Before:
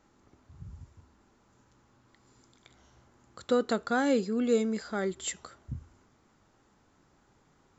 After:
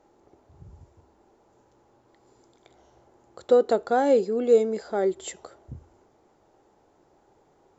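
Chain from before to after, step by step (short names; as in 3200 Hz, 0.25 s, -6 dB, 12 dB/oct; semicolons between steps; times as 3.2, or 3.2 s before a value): band shelf 540 Hz +11.5 dB; gain -2.5 dB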